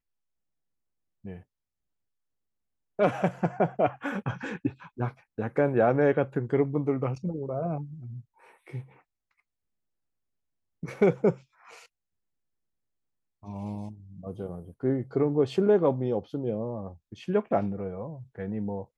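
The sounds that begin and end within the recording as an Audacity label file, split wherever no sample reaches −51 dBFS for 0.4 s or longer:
1.240000	1.430000	sound
2.990000	8.990000	sound
10.830000	11.860000	sound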